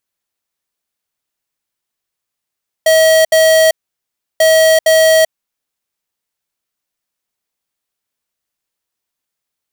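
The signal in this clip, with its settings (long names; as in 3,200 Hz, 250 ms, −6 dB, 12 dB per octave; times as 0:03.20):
beeps in groups square 640 Hz, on 0.39 s, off 0.07 s, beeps 2, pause 0.69 s, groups 2, −8.5 dBFS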